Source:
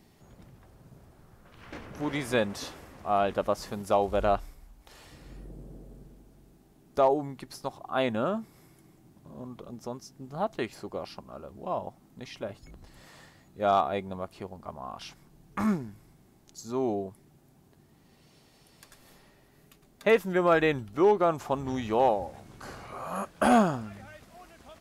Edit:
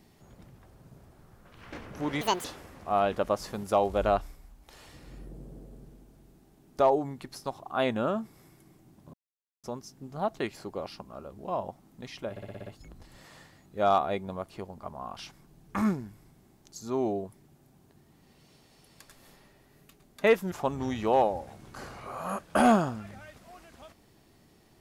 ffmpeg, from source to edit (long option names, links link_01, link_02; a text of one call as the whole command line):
ffmpeg -i in.wav -filter_complex "[0:a]asplit=12[link_01][link_02][link_03][link_04][link_05][link_06][link_07][link_08][link_09][link_10][link_11][link_12];[link_01]atrim=end=2.214[link_13];[link_02]atrim=start=2.21:end=2.63,asetpts=PTS-STARTPTS,asetrate=78498,aresample=44100[link_14];[link_03]atrim=start=2.626:end=9.32,asetpts=PTS-STARTPTS,afade=type=out:start_time=6.69:duration=0.004:curve=hsin[link_15];[link_04]atrim=start=9.32:end=9.82,asetpts=PTS-STARTPTS,volume=0[link_16];[link_05]atrim=start=9.82:end=12.552,asetpts=PTS-STARTPTS,afade=type=in:duration=0.004:curve=hsin[link_17];[link_06]atrim=start=12.488:end=12.552[link_18];[link_07]atrim=start=12.488:end=12.552[link_19];[link_08]atrim=start=12.488:end=12.552[link_20];[link_09]atrim=start=12.488:end=12.552[link_21];[link_10]atrim=start=12.488:end=12.552[link_22];[link_11]atrim=start=12.488:end=20.342[link_23];[link_12]atrim=start=21.378[link_24];[link_13][link_14]acrossfade=duration=0.004:curve1=hsin:curve2=hsin[link_25];[link_15][link_16][link_17]concat=n=3:v=0:a=1[link_26];[link_25][link_26]acrossfade=duration=0.004:curve1=hsin:curve2=hsin[link_27];[link_27][link_18]acrossfade=duration=0.004:curve1=hsin:curve2=hsin[link_28];[link_28][link_19]acrossfade=duration=0.004:curve1=hsin:curve2=hsin[link_29];[link_29][link_20]acrossfade=duration=0.004:curve1=hsin:curve2=hsin[link_30];[link_30][link_21]acrossfade=duration=0.004:curve1=hsin:curve2=hsin[link_31];[link_31][link_22]acrossfade=duration=0.004:curve1=hsin:curve2=hsin[link_32];[link_32][link_23]acrossfade=duration=0.004:curve1=hsin:curve2=hsin[link_33];[link_33][link_24]acrossfade=duration=0.004:curve1=hsin:curve2=hsin" out.wav